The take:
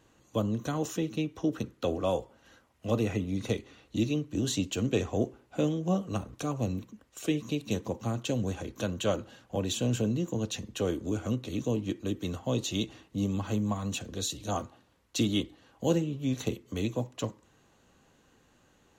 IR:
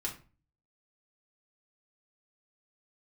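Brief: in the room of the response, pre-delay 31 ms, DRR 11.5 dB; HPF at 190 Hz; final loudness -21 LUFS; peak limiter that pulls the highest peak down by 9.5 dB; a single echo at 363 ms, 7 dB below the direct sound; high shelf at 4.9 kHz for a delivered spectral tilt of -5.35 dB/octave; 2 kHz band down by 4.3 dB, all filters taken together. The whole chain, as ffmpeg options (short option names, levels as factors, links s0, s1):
-filter_complex "[0:a]highpass=190,equalizer=f=2000:t=o:g=-5,highshelf=f=4900:g=-5.5,alimiter=level_in=1.06:limit=0.0631:level=0:latency=1,volume=0.944,aecho=1:1:363:0.447,asplit=2[s0][s1];[1:a]atrim=start_sample=2205,adelay=31[s2];[s1][s2]afir=irnorm=-1:irlink=0,volume=0.224[s3];[s0][s3]amix=inputs=2:normalize=0,volume=5.01"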